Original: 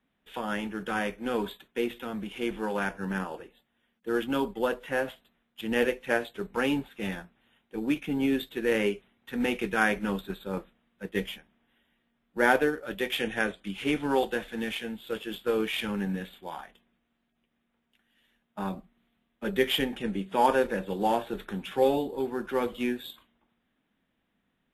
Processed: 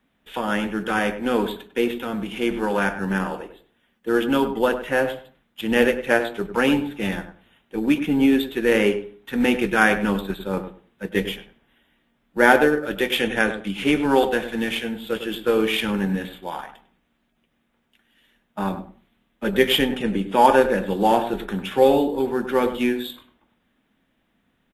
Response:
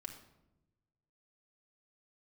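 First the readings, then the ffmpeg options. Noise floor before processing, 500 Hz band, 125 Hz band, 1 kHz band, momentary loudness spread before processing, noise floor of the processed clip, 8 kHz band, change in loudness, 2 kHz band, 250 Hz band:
-77 dBFS, +8.0 dB, +8.0 dB, +8.0 dB, 12 LU, -69 dBFS, +8.0 dB, +8.0 dB, +8.0 dB, +8.5 dB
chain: -filter_complex "[0:a]asplit=2[a][b];[b]adelay=100,lowpass=f=1.3k:p=1,volume=-9dB,asplit=2[c][d];[d]adelay=100,lowpass=f=1.3k:p=1,volume=0.2,asplit=2[e][f];[f]adelay=100,lowpass=f=1.3k:p=1,volume=0.2[g];[a][c][e][g]amix=inputs=4:normalize=0,asplit=2[h][i];[1:a]atrim=start_sample=2205,afade=t=out:st=0.33:d=0.01,atrim=end_sample=14994[j];[i][j]afir=irnorm=-1:irlink=0,volume=-10.5dB[k];[h][k]amix=inputs=2:normalize=0,volume=6.5dB"

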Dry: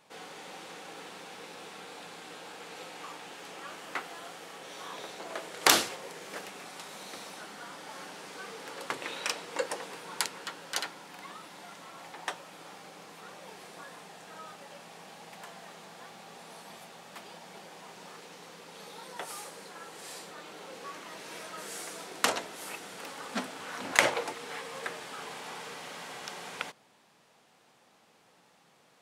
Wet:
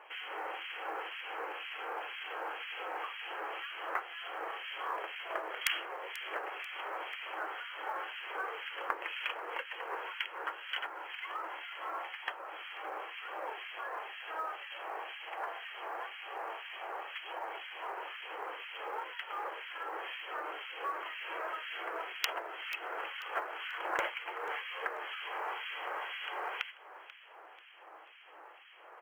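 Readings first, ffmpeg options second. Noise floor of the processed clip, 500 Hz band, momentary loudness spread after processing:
-55 dBFS, -3.5 dB, 5 LU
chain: -filter_complex "[0:a]equalizer=f=1.3k:w=0.43:g=11.5,aresample=11025,aeval=exprs='0.841*(abs(mod(val(0)/0.841+3,4)-2)-1)':c=same,aresample=44100,afftfilt=real='re*between(b*sr/4096,310,3300)':imag='im*between(b*sr/4096,310,3300)':win_size=4096:overlap=0.75,aemphasis=mode=production:type=75kf,aeval=exprs='(mod(1*val(0)+1,2)-1)/1':c=same,acompressor=threshold=-38dB:ratio=2.5,acrossover=split=1800[a][b];[a]aeval=exprs='val(0)*(1-1/2+1/2*cos(2*PI*2*n/s))':c=same[c];[b]aeval=exprs='val(0)*(1-1/2-1/2*cos(2*PI*2*n/s))':c=same[d];[c][d]amix=inputs=2:normalize=0,aeval=exprs='0.237*(cos(1*acos(clip(val(0)/0.237,-1,1)))-cos(1*PI/2))+0.00944*(cos(2*acos(clip(val(0)/0.237,-1,1)))-cos(2*PI/2))+0.0119*(cos(3*acos(clip(val(0)/0.237,-1,1)))-cos(3*PI/2))':c=same,acrusher=bits=8:mode=log:mix=0:aa=0.000001,asplit=4[e][f][g][h];[f]adelay=488,afreqshift=32,volume=-16.5dB[i];[g]adelay=976,afreqshift=64,volume=-25.1dB[j];[h]adelay=1464,afreqshift=96,volume=-33.8dB[k];[e][i][j][k]amix=inputs=4:normalize=0,volume=5dB"

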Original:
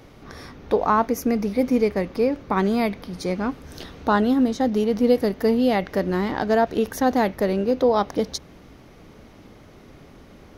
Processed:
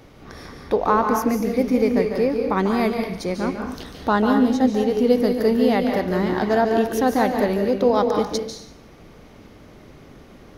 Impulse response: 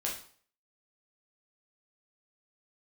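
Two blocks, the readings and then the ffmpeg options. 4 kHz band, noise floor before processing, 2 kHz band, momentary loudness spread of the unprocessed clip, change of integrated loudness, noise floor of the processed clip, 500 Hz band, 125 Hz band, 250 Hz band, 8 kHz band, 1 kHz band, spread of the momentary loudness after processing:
+1.5 dB, -48 dBFS, +2.0 dB, 10 LU, +1.5 dB, -46 dBFS, +2.0 dB, +1.0 dB, +2.0 dB, +1.5 dB, +1.5 dB, 8 LU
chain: -filter_complex "[0:a]asplit=2[a][b];[1:a]atrim=start_sample=2205,asetrate=32634,aresample=44100,adelay=144[c];[b][c]afir=irnorm=-1:irlink=0,volume=-9dB[d];[a][d]amix=inputs=2:normalize=0"

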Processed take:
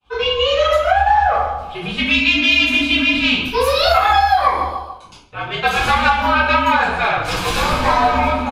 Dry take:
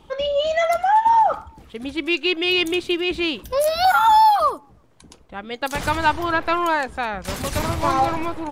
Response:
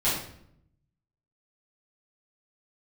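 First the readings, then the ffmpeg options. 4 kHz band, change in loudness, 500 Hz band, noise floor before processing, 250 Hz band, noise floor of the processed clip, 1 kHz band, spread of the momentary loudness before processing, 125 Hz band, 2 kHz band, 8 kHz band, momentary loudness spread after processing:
+7.5 dB, +4.5 dB, +3.5 dB, -51 dBFS, +3.5 dB, -40 dBFS, +2.5 dB, 14 LU, +6.0 dB, +9.0 dB, +2.5 dB, 10 LU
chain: -filter_complex "[0:a]aecho=1:1:144|288|432|576:0.2|0.0938|0.0441|0.0207,agate=range=-33dB:threshold=-41dB:ratio=3:detection=peak,bandreject=f=2k:w=5,asplit=2[a][b];[b]asoftclip=type=tanh:threshold=-18.5dB,volume=-6.5dB[c];[a][c]amix=inputs=2:normalize=0,aeval=exprs='0.631*(cos(1*acos(clip(val(0)/0.631,-1,1)))-cos(1*PI/2))+0.158*(cos(2*acos(clip(val(0)/0.631,-1,1)))-cos(2*PI/2))+0.0708*(cos(3*acos(clip(val(0)/0.631,-1,1)))-cos(3*PI/2))':c=same,equalizer=f=2.2k:w=0.46:g=13[d];[1:a]atrim=start_sample=2205,afade=t=out:st=0.44:d=0.01,atrim=end_sample=19845,asetrate=52920,aresample=44100[e];[d][e]afir=irnorm=-1:irlink=0,afreqshift=-75,acompressor=threshold=-2dB:ratio=5,volume=-9dB"

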